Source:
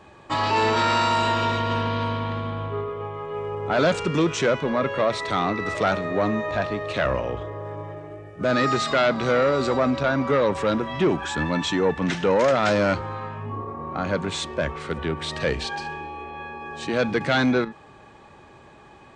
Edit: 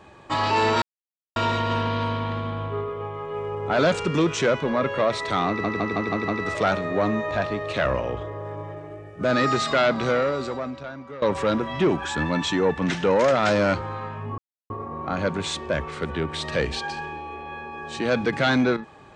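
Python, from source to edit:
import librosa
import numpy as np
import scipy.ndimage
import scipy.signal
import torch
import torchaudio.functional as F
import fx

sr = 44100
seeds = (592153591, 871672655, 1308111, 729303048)

y = fx.edit(x, sr, fx.silence(start_s=0.82, length_s=0.54),
    fx.stutter(start_s=5.48, slice_s=0.16, count=6),
    fx.fade_out_to(start_s=9.22, length_s=1.2, curve='qua', floor_db=-17.5),
    fx.insert_silence(at_s=13.58, length_s=0.32), tone=tone)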